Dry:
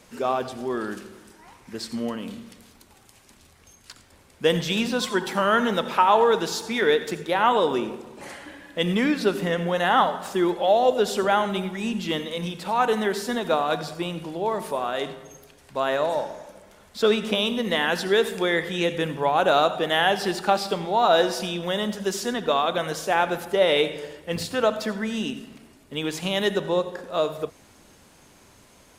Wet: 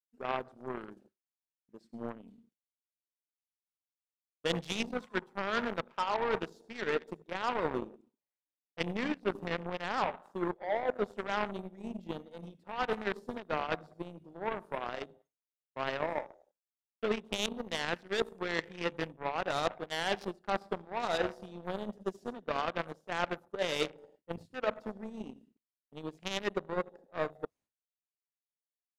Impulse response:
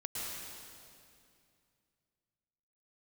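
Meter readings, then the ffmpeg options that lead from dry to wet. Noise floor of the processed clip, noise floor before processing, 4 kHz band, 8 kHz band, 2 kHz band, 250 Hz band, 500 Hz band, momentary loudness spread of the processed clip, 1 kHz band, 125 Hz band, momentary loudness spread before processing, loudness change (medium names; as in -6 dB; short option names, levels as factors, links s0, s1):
under -85 dBFS, -54 dBFS, -13.0 dB, -14.0 dB, -10.5 dB, -12.5 dB, -13.0 dB, 11 LU, -13.0 dB, -12.0 dB, 14 LU, -12.5 dB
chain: -af "afwtdn=0.0316,aeval=exprs='0.531*(cos(1*acos(clip(val(0)/0.531,-1,1)))-cos(1*PI/2))+0.00841*(cos(5*acos(clip(val(0)/0.531,-1,1)))-cos(5*PI/2))+0.00335*(cos(6*acos(clip(val(0)/0.531,-1,1)))-cos(6*PI/2))+0.075*(cos(7*acos(clip(val(0)/0.531,-1,1)))-cos(7*PI/2))+0.00596*(cos(8*acos(clip(val(0)/0.531,-1,1)))-cos(8*PI/2))':c=same,areverse,acompressor=threshold=0.0398:ratio=8,areverse,agate=range=0.0224:threshold=0.00112:ratio=3:detection=peak"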